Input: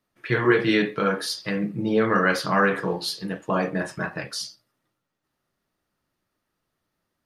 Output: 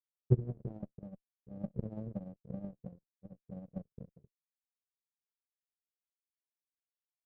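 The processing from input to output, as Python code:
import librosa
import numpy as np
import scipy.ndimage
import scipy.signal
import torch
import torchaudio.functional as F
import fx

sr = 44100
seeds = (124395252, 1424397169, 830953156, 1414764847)

y = scipy.signal.sosfilt(scipy.signal.cheby2(4, 60, [660.0, 9300.0], 'bandstop', fs=sr, output='sos'), x)
y = fx.riaa(y, sr, side='playback')
y = fx.power_curve(y, sr, exponent=3.0)
y = fx.running_max(y, sr, window=9)
y = y * 10.0 ** (-3.0 / 20.0)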